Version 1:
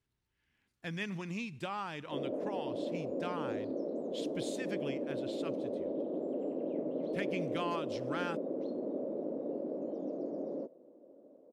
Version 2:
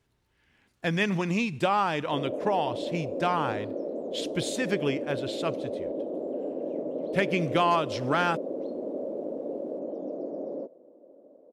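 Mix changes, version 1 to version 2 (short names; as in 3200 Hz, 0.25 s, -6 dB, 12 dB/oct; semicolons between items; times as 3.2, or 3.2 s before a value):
speech +11.0 dB; master: add bell 620 Hz +5.5 dB 1.6 oct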